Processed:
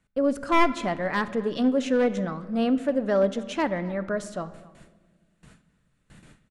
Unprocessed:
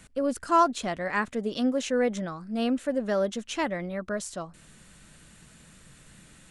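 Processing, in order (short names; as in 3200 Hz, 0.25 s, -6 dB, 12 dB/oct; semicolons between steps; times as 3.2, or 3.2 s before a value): one-sided fold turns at -20 dBFS; gate with hold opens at -41 dBFS; high shelf 3700 Hz -11.5 dB; speakerphone echo 0.26 s, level -21 dB; on a send at -12.5 dB: reverb RT60 1.4 s, pre-delay 7 ms; on the sum: gain +3.5 dB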